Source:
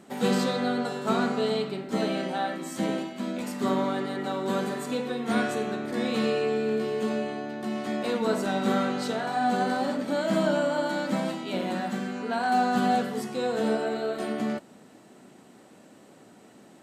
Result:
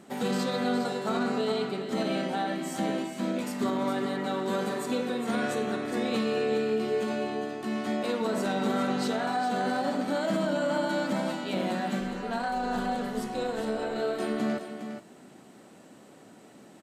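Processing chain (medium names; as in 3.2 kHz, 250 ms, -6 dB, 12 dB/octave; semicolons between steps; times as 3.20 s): peak limiter -20 dBFS, peak gain reduction 7 dB; 12.00–13.96 s: AM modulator 220 Hz, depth 40%; delay 409 ms -9 dB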